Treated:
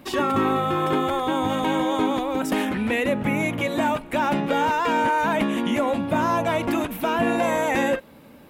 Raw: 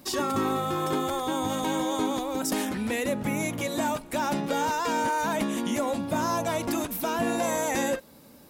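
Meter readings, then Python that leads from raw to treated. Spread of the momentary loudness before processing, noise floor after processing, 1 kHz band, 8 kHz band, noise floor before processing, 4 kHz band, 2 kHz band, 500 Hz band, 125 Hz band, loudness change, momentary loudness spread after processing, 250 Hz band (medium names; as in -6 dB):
3 LU, -47 dBFS, +5.5 dB, -6.0 dB, -52 dBFS, +2.5 dB, +6.5 dB, +5.0 dB, +5.0 dB, +5.0 dB, 3 LU, +5.0 dB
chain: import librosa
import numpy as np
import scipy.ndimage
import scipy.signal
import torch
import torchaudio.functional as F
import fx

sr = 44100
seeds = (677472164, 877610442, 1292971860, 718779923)

y = fx.high_shelf_res(x, sr, hz=3800.0, db=-9.5, q=1.5)
y = F.gain(torch.from_numpy(y), 5.0).numpy()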